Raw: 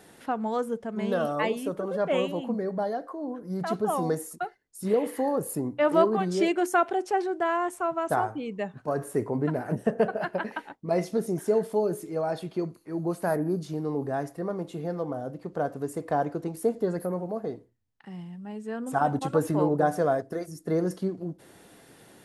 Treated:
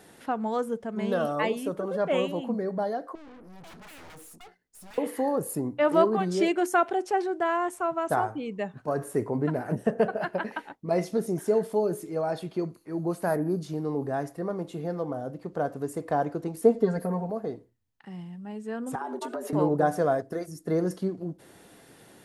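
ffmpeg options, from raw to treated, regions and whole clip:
-filter_complex "[0:a]asettb=1/sr,asplit=3[a][b][c];[a]atrim=end=3.154[d];[b]atrim=start=3.15:end=4.98,asetpts=PTS-STARTPTS,afade=t=in:d=0.004:c=qsin,afade=t=out:st=1.826:d=0.004:c=qsin,bandreject=f=60:t=h:w=6,bandreject=f=120:t=h:w=6,bandreject=f=180:t=h:w=6,bandreject=f=240:t=h:w=6,aeval=exprs='0.0316*(abs(mod(val(0)/0.0316+3,4)-2)-1)':c=same,aeval=exprs='(tanh(224*val(0)+0.4)-tanh(0.4))/224':c=same[e];[c]atrim=start=4.976[f];[d][e]acrossfade=d=0.004:c1=hsin:c2=qsin[g];[g][f]acrossfade=d=0.004:c1=qsin:c2=hsin,asettb=1/sr,asplit=3[h][i][j];[h]atrim=end=16.614[k];[i]atrim=start=16.61:end=17.3,asetpts=PTS-STARTPTS,afade=t=in:d=0.004:c=qsin,afade=t=out:st=0.686:d=0.004:c=qsin,highshelf=f=8.3k:g=-9,aecho=1:1:4.4:1,atrim=end_sample=30429[l];[j]atrim=start=17.296[m];[k][l]acrossfade=d=0.004:c1=hsin:c2=qsin[n];[n][m]acrossfade=d=0.004:c1=qsin:c2=hsin,asettb=1/sr,asplit=3[o][p][q];[o]atrim=end=18.954[r];[p]atrim=start=18.95:end=19.53,asetpts=PTS-STARTPTS,afade=t=in:d=0.004:c=qsin,afade=t=out:st=0.576:d=0.004:c=qsin,acompressor=threshold=-29dB:ratio=12:attack=3.2:release=140:knee=1:detection=peak,afreqshift=110[s];[q]atrim=start=19.526[t];[r][s]acrossfade=d=0.004:c1=hsin:c2=qsin[u];[u][t]acrossfade=d=0.004:c1=qsin:c2=hsin"

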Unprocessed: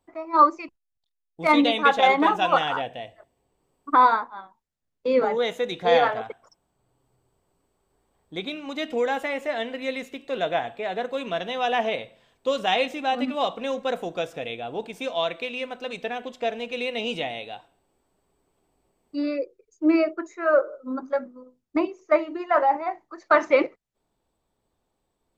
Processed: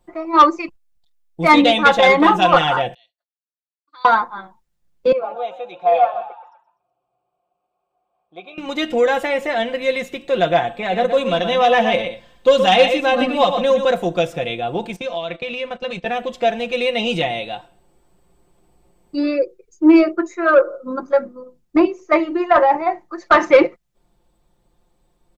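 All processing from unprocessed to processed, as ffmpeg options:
-filter_complex "[0:a]asettb=1/sr,asplit=3[a][b][c];[a]atrim=end=2.944[d];[b]atrim=start=2.94:end=4.05,asetpts=PTS-STARTPTS,afade=t=in:d=0.004:c=qsin,afade=t=out:st=1.106:d=0.004:c=qsin,agate=range=-33dB:threshold=-43dB:ratio=3:release=100:detection=peak,bandpass=f=4.3k:t=q:w=15[e];[c]atrim=start=4.046[f];[d][e]acrossfade=d=0.004:c1=hsin:c2=qsin[g];[g][f]acrossfade=d=0.004:c1=qsin:c2=hsin,asettb=1/sr,asplit=3[h][i][j];[h]atrim=end=5.124[k];[i]atrim=start=5.12:end=8.58,asetpts=PTS-STARTPTS,afade=t=in:d=0.004:c=qsin,afade=t=out:st=3.456:d=0.004:c=qsin,asplit=3[l][m][n];[l]bandpass=f=730:t=q:w=8,volume=0dB[o];[m]bandpass=f=1.09k:t=q:w=8,volume=-6dB[p];[n]bandpass=f=2.44k:t=q:w=8,volume=-9dB[q];[o][p][q]amix=inputs=3:normalize=0,asplit=5[r][s][t][u][v];[s]adelay=124,afreqshift=58,volume=-14dB[w];[t]adelay=248,afreqshift=116,volume=-21.7dB[x];[u]adelay=372,afreqshift=174,volume=-29.5dB[y];[v]adelay=496,afreqshift=232,volume=-37.2dB[z];[r][w][x][y][z]amix=inputs=5:normalize=0,atrim=end_sample=152586[aa];[j]atrim=start=8.576[ab];[k][aa]acrossfade=d=0.004:c1=hsin:c2=qsin[ac];[ac][ab]acrossfade=d=0.004:c1=qsin:c2=hsin,asettb=1/sr,asplit=3[ad][ae][af];[ad]atrim=end=10.694[ag];[ae]atrim=start=10.69:end=13.85,asetpts=PTS-STARTPTS,afade=t=in:d=0.004:c=qsin,afade=t=out:st=3.156:d=0.004:c=qsin,aecho=1:1:3.9:0.4,atrim=end_sample=139356,aecho=1:1:121:0.398,atrim=end_sample=139356[ah];[af]atrim=start=13.846[ai];[ag][ah]acrossfade=d=0.004:c1=hsin:c2=qsin[aj];[aj][ai]acrossfade=d=0.004:c1=qsin:c2=hsin,asettb=1/sr,asplit=3[ak][al][am];[ak]atrim=end=14.964[an];[al]atrim=start=14.96:end=16.06,asetpts=PTS-STARTPTS,afade=t=in:d=0.004:c=qsin,afade=t=out:st=1.096:d=0.004:c=qsin,lowpass=6.4k,acompressor=threshold=-30dB:ratio=10:attack=3.2:release=140:knee=1:detection=peak,agate=range=-12dB:threshold=-42dB:ratio=16:release=100:detection=peak[ao];[am]atrim=start=16.056[ap];[an][ao]acrossfade=d=0.004:c1=hsin:c2=qsin[aq];[aq][ap]acrossfade=d=0.004:c1=qsin:c2=hsin,lowshelf=f=140:g=10,aecho=1:1:5.7:0.61,acontrast=76"

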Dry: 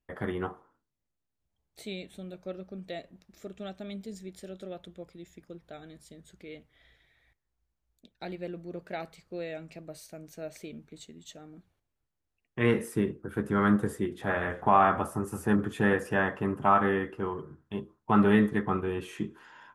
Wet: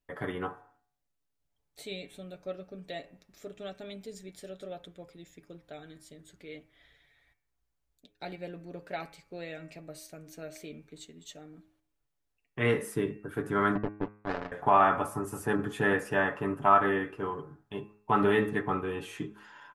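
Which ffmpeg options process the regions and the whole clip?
-filter_complex "[0:a]asettb=1/sr,asplit=3[a][b][c];[a]atrim=end=13.754[d];[b]atrim=start=13.75:end=14.52,asetpts=PTS-STARTPTS,afade=t=in:d=0.004:c=qsin,afade=t=out:st=0.766:d=0.004:c=qsin,acrusher=bits=3:mix=0:aa=0.5,adynamicsmooth=sensitivity=0.5:basefreq=740[e];[c]atrim=start=14.516[f];[d][e]acrossfade=d=0.004:c1=hsin:c2=qsin[g];[g][f]acrossfade=d=0.004:c1=qsin:c2=hsin,equalizer=f=140:w=0.57:g=-4,aecho=1:1:7:0.49,bandreject=f=104.3:t=h:w=4,bandreject=f=208.6:t=h:w=4,bandreject=f=312.9:t=h:w=4,bandreject=f=417.2:t=h:w=4,bandreject=f=521.5:t=h:w=4,bandreject=f=625.8:t=h:w=4,bandreject=f=730.1:t=h:w=4,bandreject=f=834.4:t=h:w=4,bandreject=f=938.7:t=h:w=4,bandreject=f=1.043k:t=h:w=4,bandreject=f=1.1473k:t=h:w=4,bandreject=f=1.2516k:t=h:w=4,bandreject=f=1.3559k:t=h:w=4,bandreject=f=1.4602k:t=h:w=4,bandreject=f=1.5645k:t=h:w=4,bandreject=f=1.6688k:t=h:w=4,bandreject=f=1.7731k:t=h:w=4,bandreject=f=1.8774k:t=h:w=4,bandreject=f=1.9817k:t=h:w=4,bandreject=f=2.086k:t=h:w=4,bandreject=f=2.1903k:t=h:w=4,bandreject=f=2.2946k:t=h:w=4,bandreject=f=2.3989k:t=h:w=4,bandreject=f=2.5032k:t=h:w=4,bandreject=f=2.6075k:t=h:w=4,bandreject=f=2.7118k:t=h:w=4"

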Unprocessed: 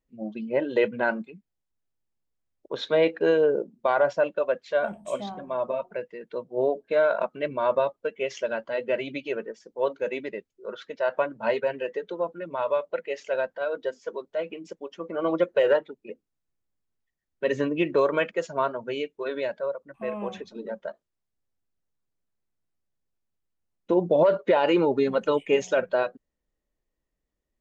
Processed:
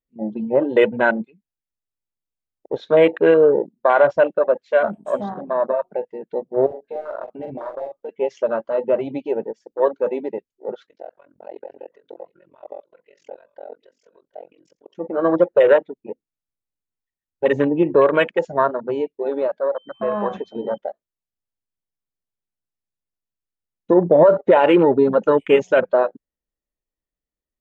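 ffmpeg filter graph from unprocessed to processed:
-filter_complex "[0:a]asettb=1/sr,asplit=3[a][b][c];[a]atrim=end=6.664[d];[b]atrim=start=6.66:end=8.09,asetpts=PTS-STARTPTS,afade=t=in:d=0.004:c=qsin,afade=t=out:st=1.426:d=0.004:c=qsin,aeval=exprs='clip(val(0),-1,0.0841)':c=same,acompressor=threshold=-38dB:ratio=3:attack=3.2:release=140:knee=1:detection=peak,asplit=2[e][f];[f]adelay=43,volume=-5.5dB[g];[e][g]amix=inputs=2:normalize=0,atrim=end_sample=63063[h];[c]atrim=start=8.086[i];[d][h]acrossfade=d=0.004:c1=hsin:c2=qsin[j];[j][i]acrossfade=d=0.004:c1=qsin:c2=hsin,asettb=1/sr,asplit=3[k][l][m];[k]atrim=end=10.864[n];[l]atrim=start=10.86:end=14.96,asetpts=PTS-STARTPTS,afade=t=in:d=0.004:c=qsin,afade=t=out:st=4.096:d=0.004:c=qsin,acompressor=threshold=-41dB:ratio=2.5:attack=3.2:release=140:knee=1:detection=peak,tremolo=f=44:d=1,aecho=1:1:744:0.133,atrim=end_sample=180810[o];[m]atrim=start=14.956[p];[n][o]acrossfade=d=0.004:c1=hsin:c2=qsin[q];[q][p]acrossfade=d=0.004:c1=qsin:c2=hsin,asettb=1/sr,asplit=3[r][s][t];[r]atrim=end=19.764[u];[s]atrim=start=19.76:end=20.78,asetpts=PTS-STARTPTS,afade=t=in:d=0.004:c=qsin,afade=t=out:st=1.016:d=0.004:c=qsin,equalizer=f=1.3k:t=o:w=2.6:g=8.5,acompressor=threshold=-30dB:ratio=1.5:attack=3.2:release=140:knee=1:detection=peak,aeval=exprs='val(0)+0.00562*sin(2*PI*3100*n/s)':c=same[v];[t]atrim=start=20.776[w];[u][v]acrossfade=d=0.004:c1=hsin:c2=qsin[x];[x][w]acrossfade=d=0.004:c1=qsin:c2=hsin,acontrast=27,afwtdn=0.0447,volume=3dB"

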